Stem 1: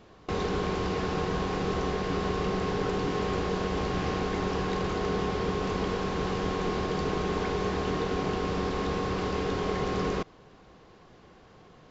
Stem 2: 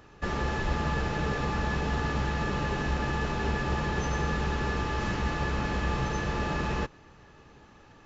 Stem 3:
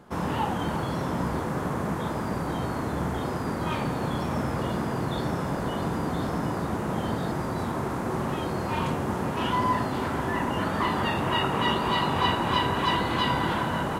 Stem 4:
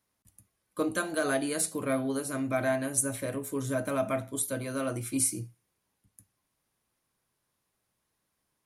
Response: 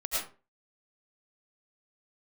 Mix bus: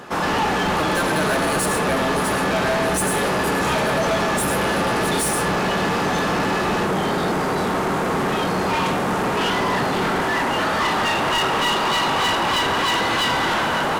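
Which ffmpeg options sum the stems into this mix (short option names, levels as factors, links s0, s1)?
-filter_complex "[0:a]bandpass=f=160:t=q:w=1.2:csg=0,volume=1.33[s0];[1:a]volume=0.501[s1];[2:a]bandreject=f=1000:w=15,volume=0.668[s2];[3:a]volume=0.447,asplit=2[s3][s4];[s4]volume=0.335[s5];[4:a]atrim=start_sample=2205[s6];[s5][s6]afir=irnorm=-1:irlink=0[s7];[s0][s1][s2][s3][s7]amix=inputs=5:normalize=0,asplit=2[s8][s9];[s9]highpass=f=720:p=1,volume=20,asoftclip=type=tanh:threshold=0.237[s10];[s8][s10]amix=inputs=2:normalize=0,lowpass=f=7700:p=1,volume=0.501"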